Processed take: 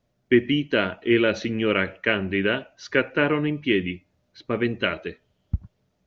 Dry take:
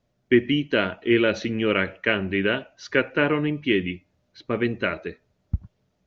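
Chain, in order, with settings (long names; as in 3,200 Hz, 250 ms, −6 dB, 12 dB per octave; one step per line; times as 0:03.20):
0:04.81–0:05.55: parametric band 3,100 Hz +13 dB 0.25 octaves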